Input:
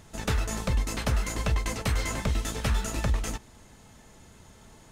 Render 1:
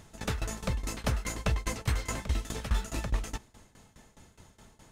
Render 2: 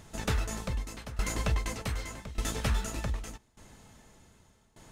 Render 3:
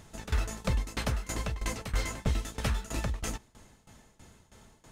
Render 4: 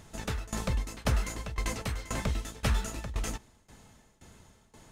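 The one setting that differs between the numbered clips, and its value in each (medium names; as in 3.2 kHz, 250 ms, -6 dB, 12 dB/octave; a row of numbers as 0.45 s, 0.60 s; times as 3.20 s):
tremolo, rate: 4.8 Hz, 0.84 Hz, 3.1 Hz, 1.9 Hz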